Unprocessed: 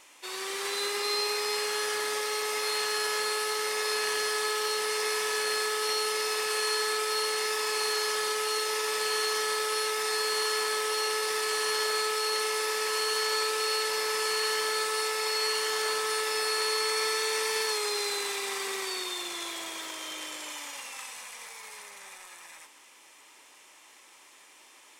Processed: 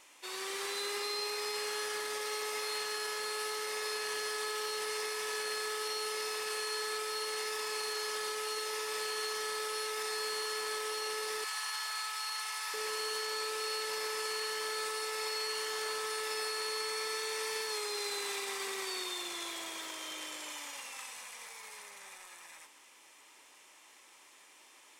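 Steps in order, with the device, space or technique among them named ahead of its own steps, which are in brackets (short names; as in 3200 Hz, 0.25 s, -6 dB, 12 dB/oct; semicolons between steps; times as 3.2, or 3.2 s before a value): soft clipper into limiter (soft clip -17.5 dBFS, distortion -27 dB; limiter -24.5 dBFS, peak gain reduction 5 dB); 11.44–12.74 steep high-pass 710 Hz 36 dB/oct; gain -4 dB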